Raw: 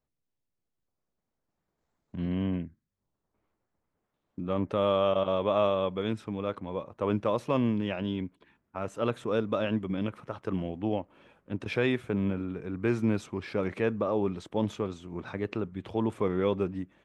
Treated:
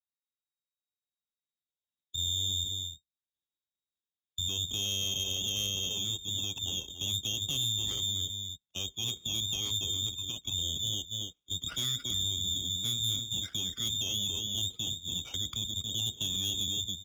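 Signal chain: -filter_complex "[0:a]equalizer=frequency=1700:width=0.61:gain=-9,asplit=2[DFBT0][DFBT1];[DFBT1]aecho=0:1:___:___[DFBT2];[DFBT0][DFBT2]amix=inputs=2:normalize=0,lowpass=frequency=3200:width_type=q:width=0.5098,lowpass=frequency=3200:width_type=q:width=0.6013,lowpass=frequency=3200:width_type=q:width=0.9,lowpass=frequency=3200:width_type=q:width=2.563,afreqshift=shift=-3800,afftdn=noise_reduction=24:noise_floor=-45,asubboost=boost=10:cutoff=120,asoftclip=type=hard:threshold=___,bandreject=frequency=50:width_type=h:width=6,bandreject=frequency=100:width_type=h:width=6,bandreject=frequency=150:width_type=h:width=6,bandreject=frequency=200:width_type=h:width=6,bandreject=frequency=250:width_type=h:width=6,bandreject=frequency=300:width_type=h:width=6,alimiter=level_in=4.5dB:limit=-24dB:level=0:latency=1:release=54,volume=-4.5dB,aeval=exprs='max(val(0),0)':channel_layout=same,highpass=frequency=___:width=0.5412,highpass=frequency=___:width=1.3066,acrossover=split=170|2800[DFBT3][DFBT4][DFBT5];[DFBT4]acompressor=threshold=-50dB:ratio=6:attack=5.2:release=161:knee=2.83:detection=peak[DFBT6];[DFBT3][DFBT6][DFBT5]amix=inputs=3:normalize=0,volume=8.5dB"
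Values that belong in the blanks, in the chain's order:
280, 0.316, -21.5dB, 45, 45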